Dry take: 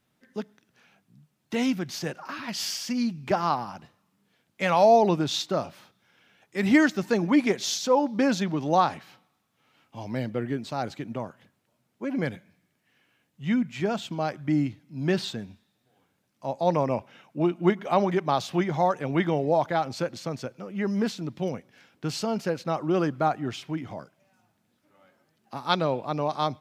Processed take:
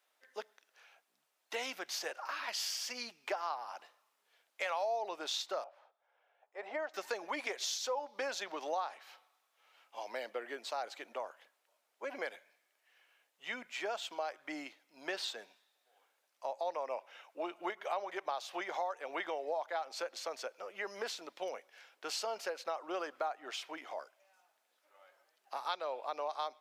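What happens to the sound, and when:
5.64–6.94 s: band-pass filter 670 Hz, Q 2
whole clip: high-pass 520 Hz 24 dB/octave; compression 4:1, threshold -34 dBFS; trim -1.5 dB

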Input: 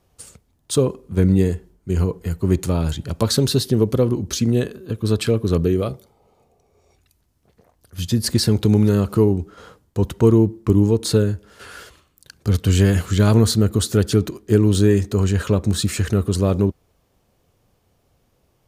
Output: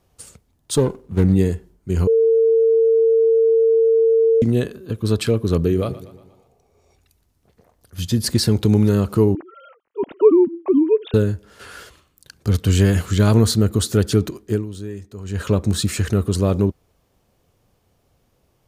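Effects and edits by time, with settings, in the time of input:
0.77–1.34 s: sliding maximum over 9 samples
2.07–4.42 s: bleep 452 Hz -11.5 dBFS
5.57–8.25 s: feedback delay 119 ms, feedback 53%, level -16.5 dB
9.35–11.14 s: formants replaced by sine waves
14.41–15.49 s: dip -16 dB, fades 0.25 s

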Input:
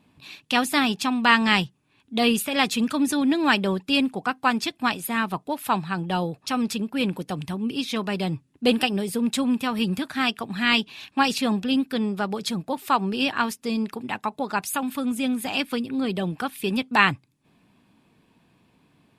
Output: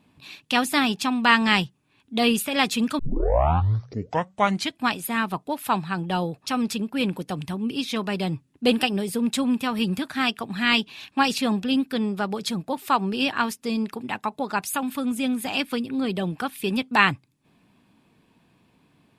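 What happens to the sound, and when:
2.99 s: tape start 1.82 s

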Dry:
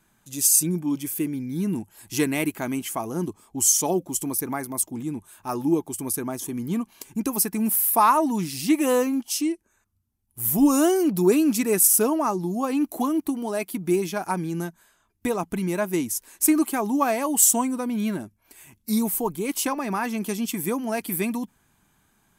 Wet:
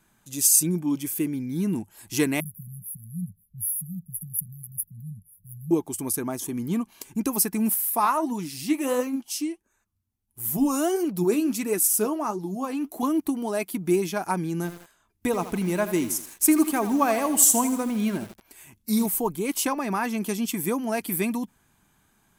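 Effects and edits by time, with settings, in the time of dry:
2.40–5.71 s: brick-wall FIR band-stop 200–10000 Hz
7.74–13.03 s: flange 1.5 Hz, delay 1.9 ms, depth 8.7 ms, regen +62%
14.56–19.06 s: bit-crushed delay 81 ms, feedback 55%, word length 6-bit, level -11 dB

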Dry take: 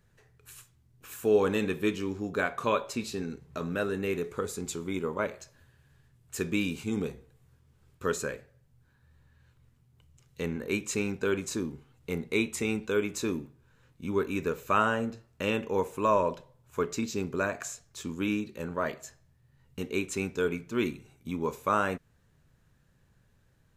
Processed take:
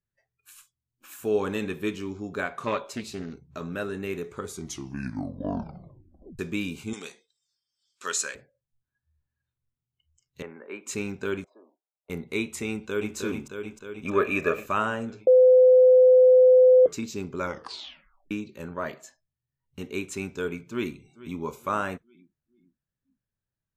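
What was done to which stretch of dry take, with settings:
2.50–3.43 s: loudspeaker Doppler distortion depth 0.25 ms
4.45 s: tape stop 1.94 s
6.93–8.35 s: frequency weighting ITU-R 468
10.42–10.87 s: three-band isolator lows -17 dB, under 410 Hz, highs -22 dB, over 2.1 kHz
11.44–12.10 s: ladder band-pass 690 Hz, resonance 75%
12.70–13.16 s: echo throw 310 ms, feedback 70%, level -4 dB
14.05–14.66 s: small resonant body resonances 630/1200/1700/2400 Hz, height 17 dB, ringing for 20 ms
15.27–16.86 s: bleep 509 Hz -9 dBFS
17.37 s: tape stop 0.94 s
19.02–19.84 s: treble shelf 11 kHz -6 dB
20.58–21.39 s: echo throw 440 ms, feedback 45%, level -17 dB
whole clip: band-stop 480 Hz, Q 12; spectral noise reduction 23 dB; trim -1 dB

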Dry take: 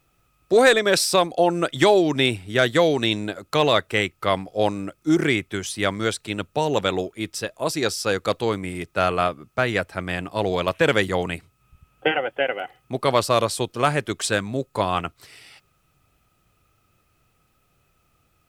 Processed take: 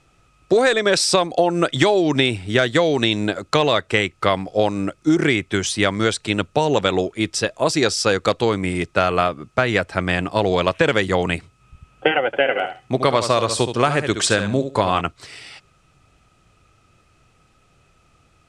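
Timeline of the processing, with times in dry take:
12.26–15.01 s: feedback delay 70 ms, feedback 16%, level -10 dB
whole clip: compression, threshold -21 dBFS; low-pass 8.7 kHz 24 dB/octave; trim +8 dB

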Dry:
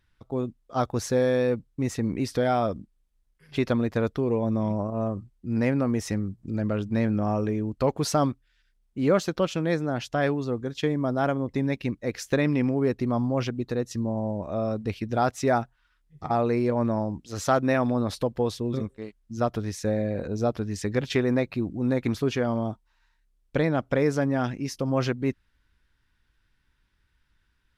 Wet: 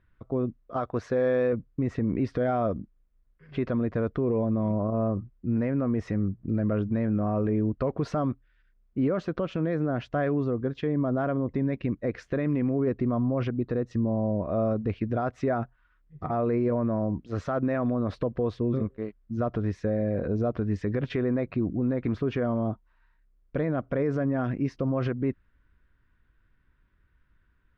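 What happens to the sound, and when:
0.76–1.53 s: bass shelf 360 Hz -9 dB
whole clip: low-pass 1.6 kHz 12 dB/octave; peak limiter -22 dBFS; band-stop 850 Hz, Q 5.2; trim +4 dB

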